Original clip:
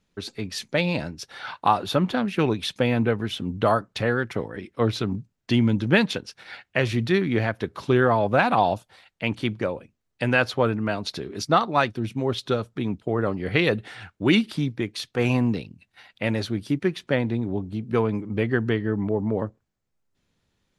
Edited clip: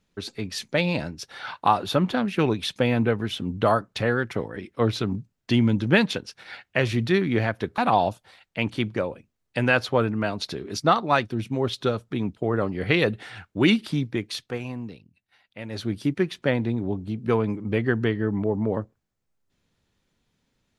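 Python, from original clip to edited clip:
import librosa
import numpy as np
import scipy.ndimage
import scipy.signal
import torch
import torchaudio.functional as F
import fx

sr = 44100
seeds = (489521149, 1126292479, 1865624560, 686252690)

y = fx.edit(x, sr, fx.cut(start_s=7.78, length_s=0.65),
    fx.fade_down_up(start_s=15.0, length_s=1.58, db=-12.0, fade_s=0.24, curve='qsin'), tone=tone)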